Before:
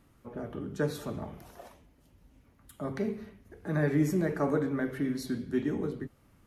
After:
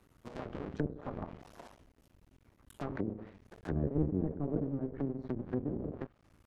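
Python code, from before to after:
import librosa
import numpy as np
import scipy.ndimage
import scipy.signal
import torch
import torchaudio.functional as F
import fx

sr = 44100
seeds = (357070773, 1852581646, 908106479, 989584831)

y = fx.cycle_switch(x, sr, every=2, mode='muted')
y = fx.env_lowpass_down(y, sr, base_hz=370.0, full_db=-31.0)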